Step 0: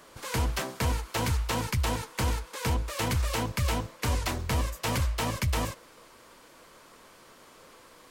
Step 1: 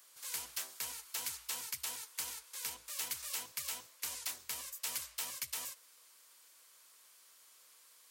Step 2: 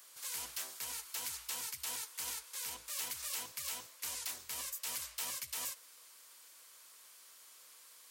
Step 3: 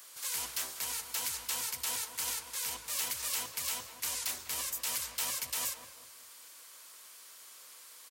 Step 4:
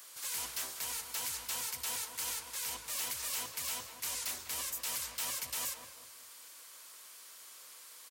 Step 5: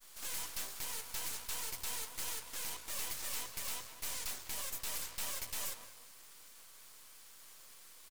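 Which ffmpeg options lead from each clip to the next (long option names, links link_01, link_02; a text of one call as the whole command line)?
ffmpeg -i in.wav -af "aderivative,volume=-2dB" out.wav
ffmpeg -i in.wav -af "alimiter=level_in=7.5dB:limit=-24dB:level=0:latency=1:release=108,volume=-7.5dB,volume=4dB" out.wav
ffmpeg -i in.wav -filter_complex "[0:a]asplit=2[link_01][link_02];[link_02]adelay=195,lowpass=frequency=1100:poles=1,volume=-7dB,asplit=2[link_03][link_04];[link_04]adelay=195,lowpass=frequency=1100:poles=1,volume=0.42,asplit=2[link_05][link_06];[link_06]adelay=195,lowpass=frequency=1100:poles=1,volume=0.42,asplit=2[link_07][link_08];[link_08]adelay=195,lowpass=frequency=1100:poles=1,volume=0.42,asplit=2[link_09][link_10];[link_10]adelay=195,lowpass=frequency=1100:poles=1,volume=0.42[link_11];[link_01][link_03][link_05][link_07][link_09][link_11]amix=inputs=6:normalize=0,volume=5.5dB" out.wav
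ffmpeg -i in.wav -af "asoftclip=type=tanh:threshold=-30.5dB" out.wav
ffmpeg -i in.wav -af "aeval=exprs='max(val(0),0)':channel_layout=same,agate=range=-33dB:threshold=-53dB:ratio=3:detection=peak,volume=1.5dB" out.wav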